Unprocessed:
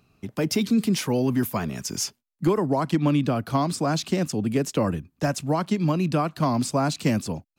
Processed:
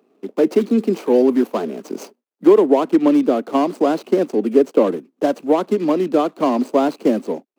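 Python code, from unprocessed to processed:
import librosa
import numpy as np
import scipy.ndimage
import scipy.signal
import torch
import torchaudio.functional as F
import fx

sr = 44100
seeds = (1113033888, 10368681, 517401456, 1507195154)

y = scipy.signal.medfilt(x, 25)
y = scipy.signal.sosfilt(scipy.signal.butter(6, 230.0, 'highpass', fs=sr, output='sos'), y)
y = fx.peak_eq(y, sr, hz=430.0, db=9.0, octaves=1.0)
y = F.gain(torch.from_numpy(y), 5.0).numpy()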